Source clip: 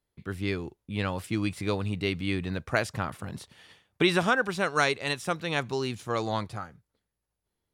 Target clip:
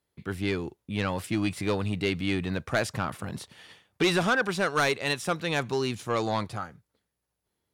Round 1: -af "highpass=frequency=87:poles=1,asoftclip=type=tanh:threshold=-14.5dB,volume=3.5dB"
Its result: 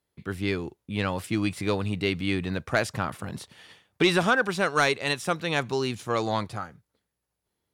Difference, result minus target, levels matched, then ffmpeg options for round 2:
soft clipping: distortion −8 dB
-af "highpass=frequency=87:poles=1,asoftclip=type=tanh:threshold=-21dB,volume=3.5dB"

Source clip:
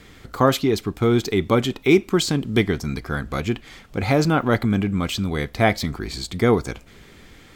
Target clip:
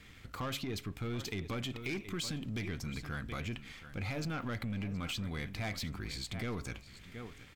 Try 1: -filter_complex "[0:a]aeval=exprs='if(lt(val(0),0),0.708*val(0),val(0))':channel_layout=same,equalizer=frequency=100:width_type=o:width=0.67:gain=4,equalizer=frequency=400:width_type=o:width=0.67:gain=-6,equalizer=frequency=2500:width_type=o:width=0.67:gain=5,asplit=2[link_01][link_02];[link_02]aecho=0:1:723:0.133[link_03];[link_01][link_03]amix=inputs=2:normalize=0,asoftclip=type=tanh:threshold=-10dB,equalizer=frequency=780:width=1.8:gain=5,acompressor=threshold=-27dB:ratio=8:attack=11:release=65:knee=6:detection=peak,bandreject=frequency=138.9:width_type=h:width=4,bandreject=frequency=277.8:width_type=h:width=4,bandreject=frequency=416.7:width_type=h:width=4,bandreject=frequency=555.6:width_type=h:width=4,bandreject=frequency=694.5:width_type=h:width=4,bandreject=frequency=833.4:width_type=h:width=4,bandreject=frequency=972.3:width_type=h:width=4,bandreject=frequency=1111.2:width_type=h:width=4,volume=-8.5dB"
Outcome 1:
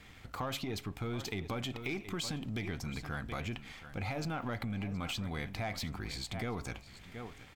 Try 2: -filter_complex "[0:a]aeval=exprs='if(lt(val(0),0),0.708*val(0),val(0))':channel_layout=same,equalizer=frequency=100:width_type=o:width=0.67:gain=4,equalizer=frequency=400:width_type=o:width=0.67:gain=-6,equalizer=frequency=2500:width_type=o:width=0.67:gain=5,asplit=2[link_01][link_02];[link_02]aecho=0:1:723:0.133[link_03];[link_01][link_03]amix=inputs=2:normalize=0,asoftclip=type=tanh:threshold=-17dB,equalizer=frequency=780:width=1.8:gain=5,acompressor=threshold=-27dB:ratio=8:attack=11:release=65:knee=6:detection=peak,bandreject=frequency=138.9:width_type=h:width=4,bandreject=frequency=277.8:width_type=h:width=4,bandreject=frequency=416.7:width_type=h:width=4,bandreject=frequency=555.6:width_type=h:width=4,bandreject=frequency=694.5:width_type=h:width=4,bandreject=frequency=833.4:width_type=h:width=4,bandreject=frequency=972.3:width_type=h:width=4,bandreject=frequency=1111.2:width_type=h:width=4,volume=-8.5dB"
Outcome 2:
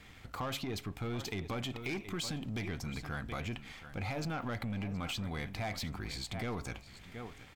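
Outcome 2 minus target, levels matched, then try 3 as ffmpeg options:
1,000 Hz band +3.0 dB
-filter_complex "[0:a]aeval=exprs='if(lt(val(0),0),0.708*val(0),val(0))':channel_layout=same,equalizer=frequency=100:width_type=o:width=0.67:gain=4,equalizer=frequency=400:width_type=o:width=0.67:gain=-6,equalizer=frequency=2500:width_type=o:width=0.67:gain=5,asplit=2[link_01][link_02];[link_02]aecho=0:1:723:0.133[link_03];[link_01][link_03]amix=inputs=2:normalize=0,asoftclip=type=tanh:threshold=-17dB,equalizer=frequency=780:width=1.8:gain=-3,acompressor=threshold=-27dB:ratio=8:attack=11:release=65:knee=6:detection=peak,bandreject=frequency=138.9:width_type=h:width=4,bandreject=frequency=277.8:width_type=h:width=4,bandreject=frequency=416.7:width_type=h:width=4,bandreject=frequency=555.6:width_type=h:width=4,bandreject=frequency=694.5:width_type=h:width=4,bandreject=frequency=833.4:width_type=h:width=4,bandreject=frequency=972.3:width_type=h:width=4,bandreject=frequency=1111.2:width_type=h:width=4,volume=-8.5dB"

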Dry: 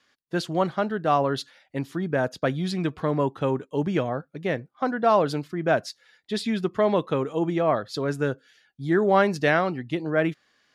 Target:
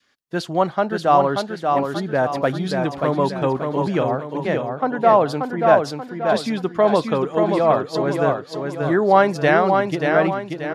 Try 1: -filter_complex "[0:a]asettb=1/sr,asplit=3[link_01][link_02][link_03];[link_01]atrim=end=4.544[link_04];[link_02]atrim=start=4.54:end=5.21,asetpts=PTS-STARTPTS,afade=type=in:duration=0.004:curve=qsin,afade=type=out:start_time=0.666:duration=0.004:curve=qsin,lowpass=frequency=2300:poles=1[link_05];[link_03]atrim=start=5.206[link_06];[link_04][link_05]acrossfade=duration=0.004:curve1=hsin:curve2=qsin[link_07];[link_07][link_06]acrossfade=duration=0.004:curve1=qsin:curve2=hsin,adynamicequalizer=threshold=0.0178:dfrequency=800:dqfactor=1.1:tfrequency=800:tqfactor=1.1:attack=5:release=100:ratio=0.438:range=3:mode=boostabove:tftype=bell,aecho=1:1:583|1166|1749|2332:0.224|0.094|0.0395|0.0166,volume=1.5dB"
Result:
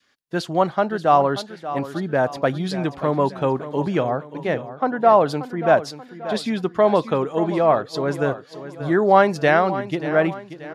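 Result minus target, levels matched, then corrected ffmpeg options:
echo-to-direct −8.5 dB
-filter_complex "[0:a]asettb=1/sr,asplit=3[link_01][link_02][link_03];[link_01]atrim=end=4.544[link_04];[link_02]atrim=start=4.54:end=5.21,asetpts=PTS-STARTPTS,afade=type=in:duration=0.004:curve=qsin,afade=type=out:start_time=0.666:duration=0.004:curve=qsin,lowpass=frequency=2300:poles=1[link_05];[link_03]atrim=start=5.206[link_06];[link_04][link_05]acrossfade=duration=0.004:curve1=hsin:curve2=qsin[link_07];[link_07][link_06]acrossfade=duration=0.004:curve1=qsin:curve2=hsin,adynamicequalizer=threshold=0.0178:dfrequency=800:dqfactor=1.1:tfrequency=800:tqfactor=1.1:attack=5:release=100:ratio=0.438:range=3:mode=boostabove:tftype=bell,aecho=1:1:583|1166|1749|2332|2915:0.596|0.25|0.105|0.0441|0.0185,volume=1.5dB"

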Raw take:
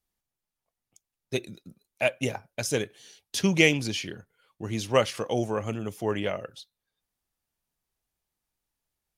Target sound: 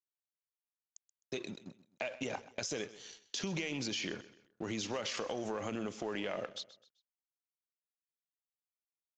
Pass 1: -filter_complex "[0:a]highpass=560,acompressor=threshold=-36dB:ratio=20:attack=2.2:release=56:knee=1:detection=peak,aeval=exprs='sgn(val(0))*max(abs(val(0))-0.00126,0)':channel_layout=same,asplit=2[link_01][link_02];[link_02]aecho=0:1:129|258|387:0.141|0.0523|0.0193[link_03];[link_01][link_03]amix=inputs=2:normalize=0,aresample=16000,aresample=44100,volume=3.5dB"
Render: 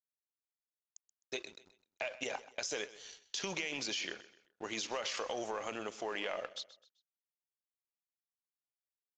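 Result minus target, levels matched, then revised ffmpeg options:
250 Hz band −7.0 dB
-filter_complex "[0:a]highpass=210,acompressor=threshold=-36dB:ratio=20:attack=2.2:release=56:knee=1:detection=peak,aeval=exprs='sgn(val(0))*max(abs(val(0))-0.00126,0)':channel_layout=same,asplit=2[link_01][link_02];[link_02]aecho=0:1:129|258|387:0.141|0.0523|0.0193[link_03];[link_01][link_03]amix=inputs=2:normalize=0,aresample=16000,aresample=44100,volume=3.5dB"

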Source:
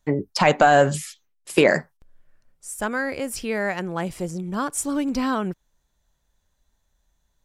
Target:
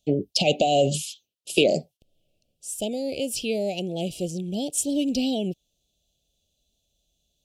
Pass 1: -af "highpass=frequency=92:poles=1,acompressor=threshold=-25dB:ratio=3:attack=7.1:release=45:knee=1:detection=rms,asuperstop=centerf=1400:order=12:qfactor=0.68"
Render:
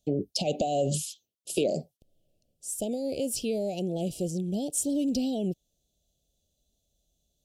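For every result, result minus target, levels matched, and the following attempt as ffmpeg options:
2,000 Hz band −9.5 dB; downward compressor: peak gain reduction +6 dB
-af "highpass=frequency=92:poles=1,acompressor=threshold=-25dB:ratio=3:attack=7.1:release=45:knee=1:detection=rms,asuperstop=centerf=1400:order=12:qfactor=0.68,equalizer=frequency=2500:width=0.82:gain=10"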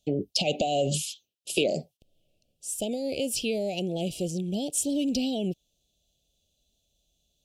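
downward compressor: peak gain reduction +6 dB
-af "highpass=frequency=92:poles=1,acompressor=threshold=-16dB:ratio=3:attack=7.1:release=45:knee=1:detection=rms,asuperstop=centerf=1400:order=12:qfactor=0.68,equalizer=frequency=2500:width=0.82:gain=10"

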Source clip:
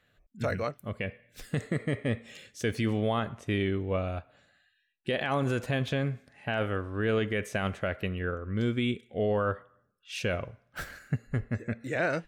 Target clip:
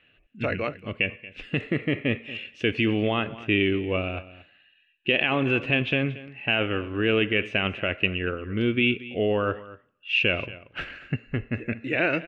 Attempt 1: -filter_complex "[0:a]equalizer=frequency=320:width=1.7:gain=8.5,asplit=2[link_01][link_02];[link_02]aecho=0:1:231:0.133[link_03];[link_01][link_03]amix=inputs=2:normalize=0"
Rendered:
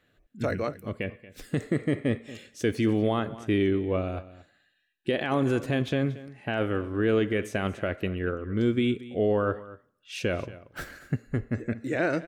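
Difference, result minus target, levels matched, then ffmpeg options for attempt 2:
2,000 Hz band −6.0 dB
-filter_complex "[0:a]lowpass=frequency=2700:width_type=q:width=9.4,equalizer=frequency=320:width=1.7:gain=8.5,asplit=2[link_01][link_02];[link_02]aecho=0:1:231:0.133[link_03];[link_01][link_03]amix=inputs=2:normalize=0"

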